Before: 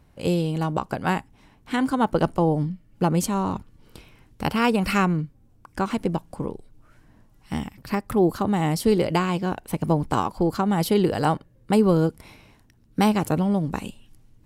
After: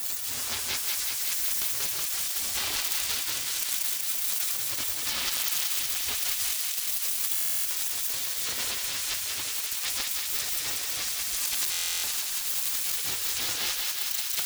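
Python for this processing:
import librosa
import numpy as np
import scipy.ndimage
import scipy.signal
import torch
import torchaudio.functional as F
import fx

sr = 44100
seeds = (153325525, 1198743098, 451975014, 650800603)

p1 = np.sign(x) * np.sqrt(np.mean(np.square(x)))
p2 = scipy.signal.sosfilt(scipy.signal.butter(2, 140.0, 'highpass', fs=sr, output='sos'), p1)
p3 = fx.spec_gate(p2, sr, threshold_db=-30, keep='weak')
p4 = fx.leveller(p3, sr, passes=5)
p5 = fx.over_compress(p4, sr, threshold_db=-32.0, ratio=-0.5)
p6 = p5 + fx.echo_thinned(p5, sr, ms=187, feedback_pct=84, hz=670.0, wet_db=-3.5, dry=0)
y = fx.buffer_glitch(p6, sr, at_s=(7.33, 11.71), block=1024, repeats=13)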